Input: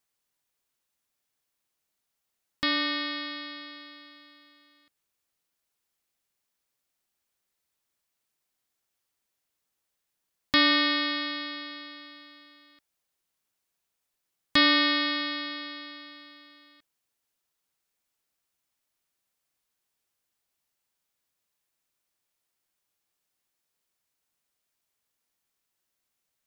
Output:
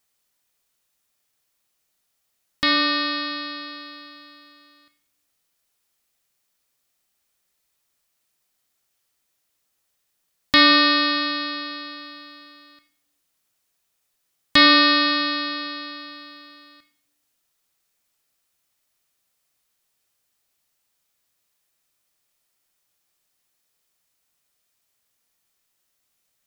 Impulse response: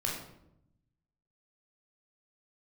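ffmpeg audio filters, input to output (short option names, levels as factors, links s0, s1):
-filter_complex "[0:a]asplit=2[s0][s1];[1:a]atrim=start_sample=2205,highshelf=f=2000:g=11.5[s2];[s1][s2]afir=irnorm=-1:irlink=0,volume=0.158[s3];[s0][s3]amix=inputs=2:normalize=0,volume=1.68"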